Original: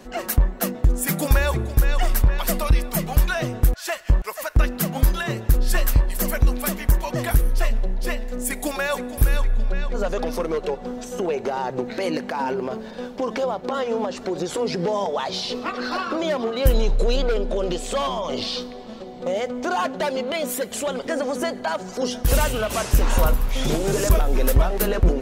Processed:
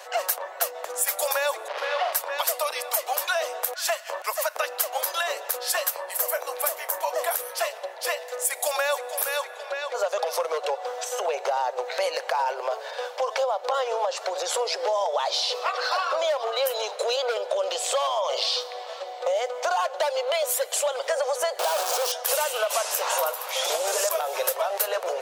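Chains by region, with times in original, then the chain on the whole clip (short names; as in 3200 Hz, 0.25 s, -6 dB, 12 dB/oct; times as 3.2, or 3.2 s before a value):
1.68–2.13 delta modulation 64 kbps, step -22.5 dBFS + air absorption 290 m + doubler 45 ms -5 dB
5.9–7.32 bell 3900 Hz -6 dB 2.3 oct + doubler 30 ms -13 dB
21.59–22.12 infinite clipping + low shelf 430 Hz +10 dB + notch 2000 Hz, Q 6.9
whole clip: steep high-pass 530 Hz 48 dB/oct; dynamic EQ 1900 Hz, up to -5 dB, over -42 dBFS, Q 1.1; compressor, threshold -28 dBFS; gain +6.5 dB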